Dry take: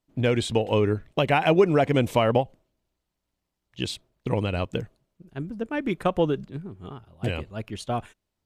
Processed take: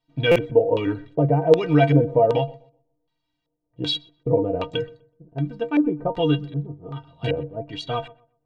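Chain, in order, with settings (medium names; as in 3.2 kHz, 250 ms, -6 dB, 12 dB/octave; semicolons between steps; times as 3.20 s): peaking EQ 880 Hz +4 dB 0.33 oct; in parallel at +2 dB: peak limiter -15 dBFS, peak gain reduction 8 dB; on the sum: inharmonic resonator 140 Hz, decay 0.25 s, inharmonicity 0.03; LFO low-pass square 1.3 Hz 540–3700 Hz; on a send: filtered feedback delay 125 ms, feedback 26%, low-pass 1.7 kHz, level -21 dB; on the sum: buffer glitch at 0.31 s, samples 256, times 7; trim +5.5 dB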